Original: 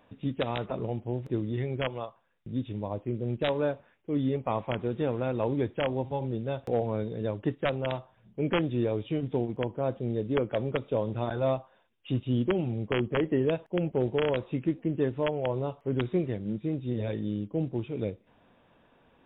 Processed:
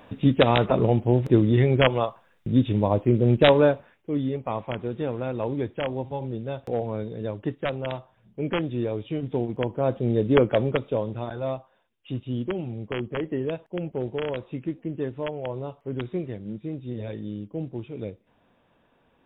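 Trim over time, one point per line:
3.50 s +12 dB
4.29 s +0.5 dB
9.09 s +0.5 dB
10.43 s +9.5 dB
11.31 s -2 dB

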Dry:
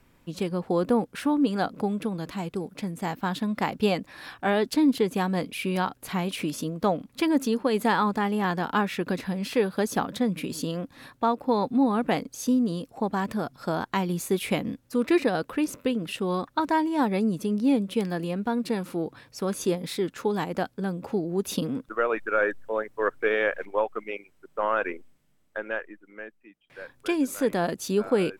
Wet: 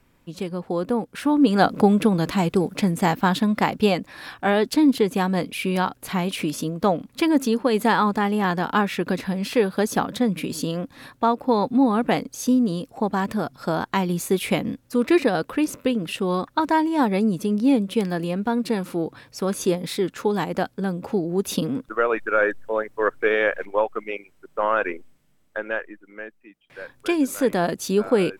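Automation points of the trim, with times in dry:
1.04 s -0.5 dB
1.71 s +11 dB
2.94 s +11 dB
3.93 s +4 dB

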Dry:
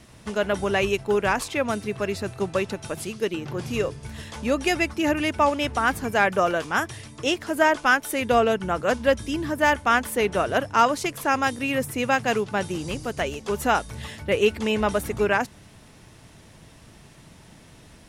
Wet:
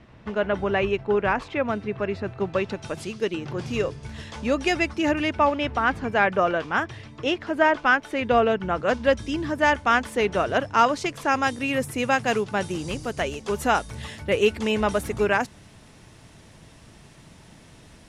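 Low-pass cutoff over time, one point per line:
2.36 s 2.5 kHz
2.91 s 6.5 kHz
5.08 s 6.5 kHz
5.49 s 3.4 kHz
8.59 s 3.4 kHz
9.12 s 6.3 kHz
11.11 s 6.3 kHz
11.93 s 11 kHz

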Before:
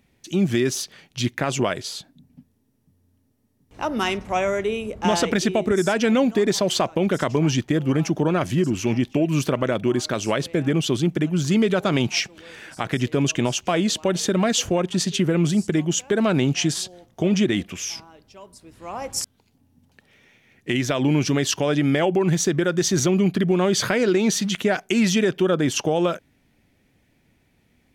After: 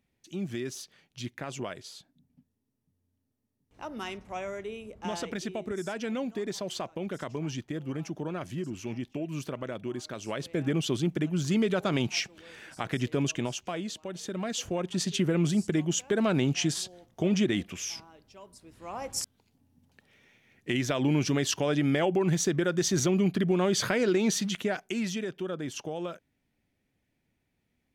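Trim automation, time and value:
10.19 s -14 dB
10.63 s -7 dB
13.20 s -7 dB
14.07 s -17 dB
15.13 s -6 dB
24.38 s -6 dB
25.26 s -14.5 dB

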